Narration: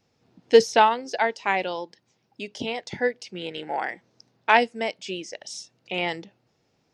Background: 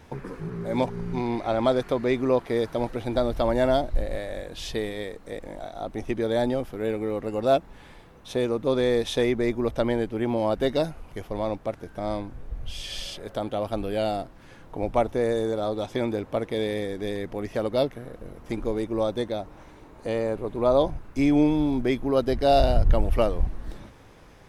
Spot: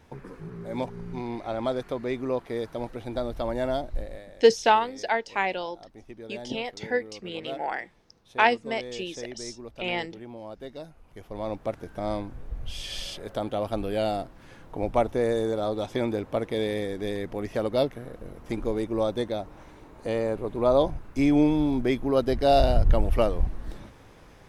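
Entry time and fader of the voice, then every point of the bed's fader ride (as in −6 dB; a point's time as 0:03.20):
3.90 s, −2.5 dB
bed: 0:04.00 −6 dB
0:04.37 −16 dB
0:10.81 −16 dB
0:11.65 −0.5 dB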